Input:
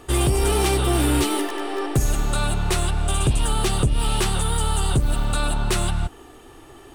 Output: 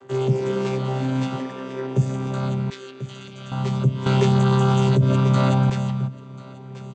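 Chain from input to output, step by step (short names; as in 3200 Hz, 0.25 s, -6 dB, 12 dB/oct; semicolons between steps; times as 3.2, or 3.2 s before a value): chord vocoder bare fifth, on C3; 2.7–3.52 band-pass 3700 Hz, Q 0.99; echo 1.04 s -12.5 dB; 4.06–5.7 fast leveller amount 70%; gain +1 dB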